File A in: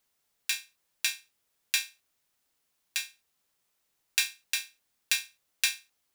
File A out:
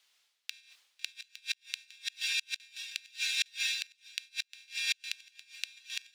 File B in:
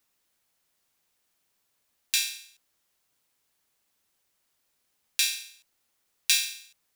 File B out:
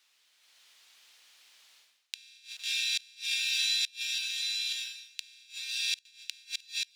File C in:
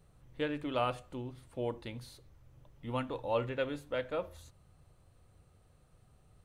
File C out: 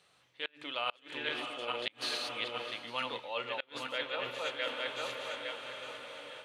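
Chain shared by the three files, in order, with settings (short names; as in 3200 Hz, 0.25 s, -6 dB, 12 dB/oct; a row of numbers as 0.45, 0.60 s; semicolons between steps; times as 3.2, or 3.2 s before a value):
regenerating reverse delay 0.43 s, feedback 46%, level -3.5 dB; notches 50/100/150/200/250/300/350/400 Hz; diffused feedback echo 0.676 s, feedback 64%, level -15.5 dB; reverse; compressor 12:1, threshold -41 dBFS; reverse; weighting filter A; flipped gate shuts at -33 dBFS, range -30 dB; bell 3400 Hz +12.5 dB 2.1 oct; AGC gain up to 7 dB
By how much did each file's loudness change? -4.5, -4.0, 0.0 LU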